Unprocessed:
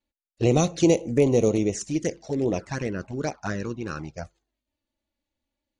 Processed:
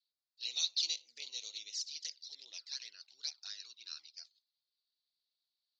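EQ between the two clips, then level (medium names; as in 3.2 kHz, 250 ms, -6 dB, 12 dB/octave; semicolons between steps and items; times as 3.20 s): Butterworth band-pass 4.4 kHz, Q 3.2; distance through air 69 m; +10.5 dB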